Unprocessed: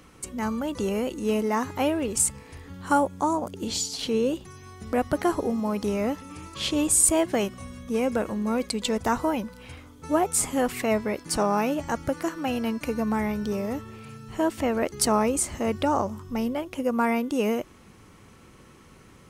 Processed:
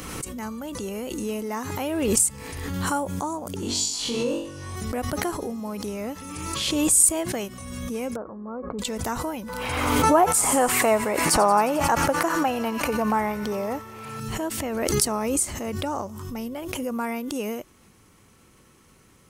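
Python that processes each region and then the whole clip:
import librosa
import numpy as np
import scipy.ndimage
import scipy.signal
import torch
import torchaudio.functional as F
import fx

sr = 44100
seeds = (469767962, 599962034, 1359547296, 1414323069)

y = fx.chain(x, sr, fx.lowpass(hz=9300.0, slope=12),
    fx.peak_eq(hz=1000.0, db=9.0, octaves=0.58),
    fx.room_flutter(wall_m=3.6, rt60_s=0.65), at=(3.56, 4.76))
y = fx.chain(y, sr, fx.ellip_lowpass(hz=1300.0, order=4, stop_db=80),
    fx.low_shelf(hz=260.0, db=-8.0), at=(8.16, 8.79))
y = fx.chain(y, sr, fx.peak_eq(hz=920.0, db=13.0, octaves=2.2),
    fx.echo_wet_highpass(ms=89, feedback_pct=74, hz=2500.0, wet_db=-11), at=(9.49, 14.2))
y = fx.high_shelf(y, sr, hz=6100.0, db=10.5)
y = fx.pre_swell(y, sr, db_per_s=29.0)
y = y * 10.0 ** (-5.5 / 20.0)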